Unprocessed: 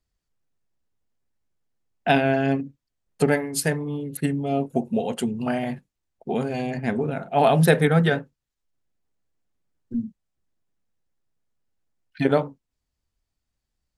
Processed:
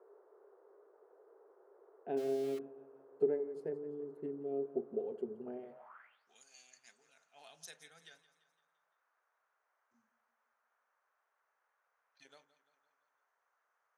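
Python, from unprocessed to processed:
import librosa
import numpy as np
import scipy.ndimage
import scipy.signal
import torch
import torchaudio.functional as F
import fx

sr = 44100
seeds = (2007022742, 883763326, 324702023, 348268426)

p1 = fx.dmg_noise_band(x, sr, seeds[0], low_hz=410.0, high_hz=1500.0, level_db=-44.0)
p2 = fx.tilt_eq(p1, sr, slope=2.5, at=(5.59, 7.33))
p3 = p2 + fx.echo_feedback(p2, sr, ms=171, feedback_pct=53, wet_db=-16, dry=0)
p4 = fx.filter_sweep_bandpass(p3, sr, from_hz=400.0, to_hz=6200.0, start_s=5.69, end_s=6.29, q=7.6)
p5 = fx.sample_gate(p4, sr, floor_db=-41.0, at=(2.17, 2.59))
y = p5 * 10.0 ** (-5.0 / 20.0)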